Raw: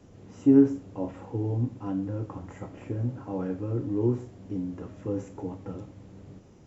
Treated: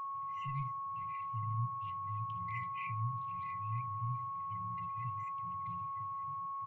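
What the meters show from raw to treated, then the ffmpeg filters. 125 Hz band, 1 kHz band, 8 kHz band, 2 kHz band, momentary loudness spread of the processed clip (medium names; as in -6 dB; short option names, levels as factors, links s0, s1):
-8.0 dB, +11.0 dB, no reading, +3.5 dB, 3 LU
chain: -filter_complex "[0:a]tiltshelf=f=800:g=-7,asplit=2[s0][s1];[s1]acompressor=threshold=0.01:ratio=6,volume=0.794[s2];[s0][s2]amix=inputs=2:normalize=0,highpass=120,acrossover=split=560 2200:gain=0.158 1 0.178[s3][s4][s5];[s3][s4][s5]amix=inputs=3:normalize=0,aecho=1:1:946:0.316,asoftclip=type=tanh:threshold=0.0316,afftdn=nr=17:nf=-53,adynamicsmooth=sensitivity=0.5:basefreq=1900,afftfilt=real='re*(1-between(b*sr/4096,180,2000))':imag='im*(1-between(b*sr/4096,180,2000))':win_size=4096:overlap=0.75,aeval=exprs='val(0)+0.002*sin(2*PI*1100*n/s)':c=same,volume=6.31"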